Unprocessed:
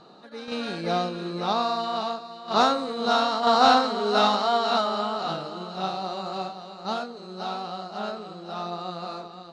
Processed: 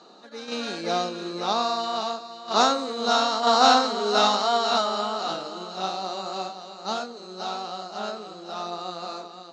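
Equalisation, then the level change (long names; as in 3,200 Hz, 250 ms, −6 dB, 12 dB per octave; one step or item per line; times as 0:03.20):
high-pass filter 210 Hz 24 dB per octave
low-pass with resonance 6,800 Hz, resonance Q 3.3
0.0 dB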